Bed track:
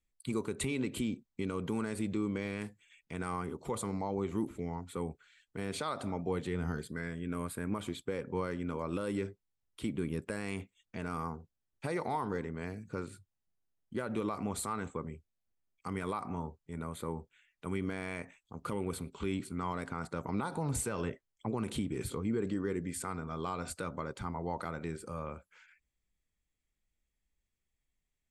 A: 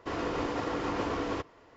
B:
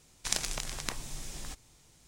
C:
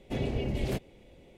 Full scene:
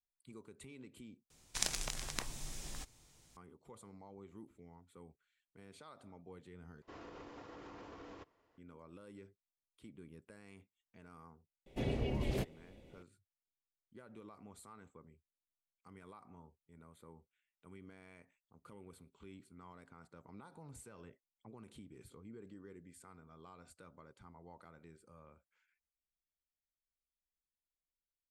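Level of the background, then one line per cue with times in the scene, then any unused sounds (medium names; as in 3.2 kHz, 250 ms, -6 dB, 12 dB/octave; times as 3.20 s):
bed track -19.5 dB
1.30 s: replace with B -4.5 dB
6.82 s: replace with A -18 dB + peak limiter -25 dBFS
11.66 s: add C -5 dB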